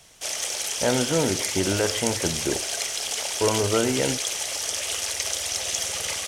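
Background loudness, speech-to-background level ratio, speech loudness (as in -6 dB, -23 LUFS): -26.0 LUFS, -0.5 dB, -26.5 LUFS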